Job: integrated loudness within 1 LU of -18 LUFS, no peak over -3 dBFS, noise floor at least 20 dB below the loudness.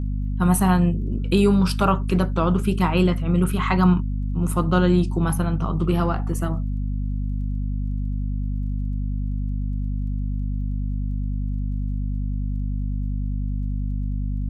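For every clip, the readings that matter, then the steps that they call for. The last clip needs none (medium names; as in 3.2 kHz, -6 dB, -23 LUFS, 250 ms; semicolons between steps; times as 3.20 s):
tick rate 21 per s; hum 50 Hz; highest harmonic 250 Hz; hum level -22 dBFS; loudness -23.5 LUFS; peak level -6.5 dBFS; loudness target -18.0 LUFS
-> de-click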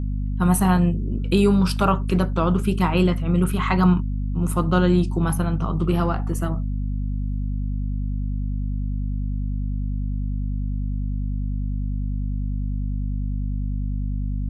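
tick rate 0.069 per s; hum 50 Hz; highest harmonic 250 Hz; hum level -22 dBFS
-> hum notches 50/100/150/200/250 Hz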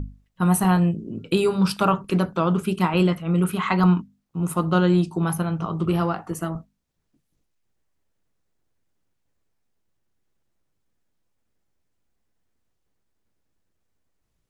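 hum not found; loudness -22.5 LUFS; peak level -6.5 dBFS; loudness target -18.0 LUFS
-> trim +4.5 dB; peak limiter -3 dBFS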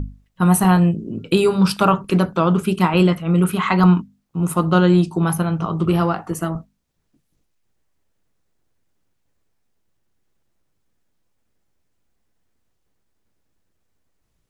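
loudness -18.0 LUFS; peak level -3.0 dBFS; noise floor -69 dBFS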